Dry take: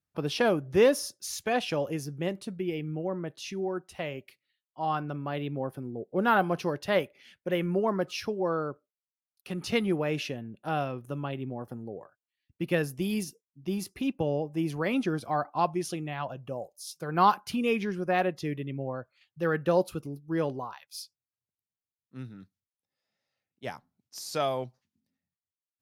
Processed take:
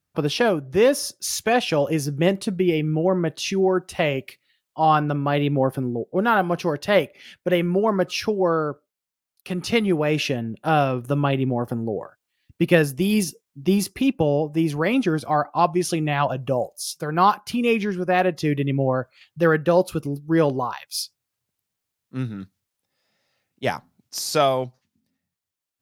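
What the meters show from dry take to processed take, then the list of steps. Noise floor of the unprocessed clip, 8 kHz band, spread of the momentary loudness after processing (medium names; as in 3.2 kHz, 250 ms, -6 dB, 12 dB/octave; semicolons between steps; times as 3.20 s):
under -85 dBFS, +10.0 dB, 10 LU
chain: gain riding within 5 dB 0.5 s; trim +8.5 dB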